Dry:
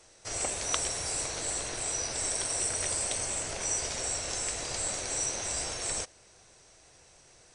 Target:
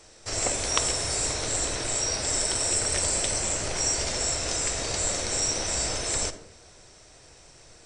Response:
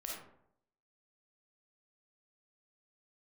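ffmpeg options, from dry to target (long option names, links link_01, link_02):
-filter_complex "[0:a]asplit=2[link_01][link_02];[1:a]atrim=start_sample=2205,lowshelf=frequency=440:gain=12[link_03];[link_02][link_03]afir=irnorm=-1:irlink=0,volume=-9dB[link_04];[link_01][link_04]amix=inputs=2:normalize=0,asetrate=42336,aresample=44100,volume=3.5dB"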